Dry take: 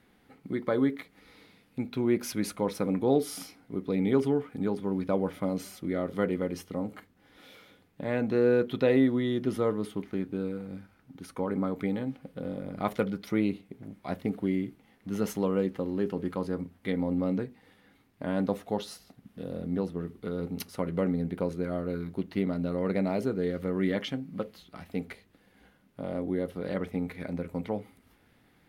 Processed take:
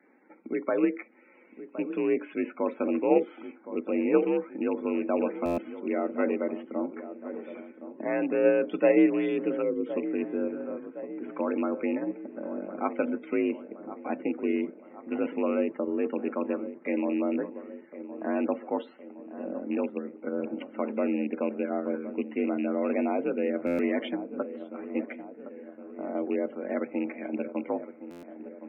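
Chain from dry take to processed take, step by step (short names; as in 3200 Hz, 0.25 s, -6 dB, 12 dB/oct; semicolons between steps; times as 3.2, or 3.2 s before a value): rattling part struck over -28 dBFS, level -31 dBFS; mistuned SSB +53 Hz 160–2900 Hz; in parallel at +2 dB: level quantiser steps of 11 dB; on the sum: loudest bins only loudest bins 64; on a send: dark delay 1.065 s, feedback 56%, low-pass 1300 Hz, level -12.5 dB; on the sum: spectral gain 9.62–9.86, 530–2000 Hz -16 dB; stuck buffer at 5.45/23.66/28.1, samples 512, times 10; gain -3.5 dB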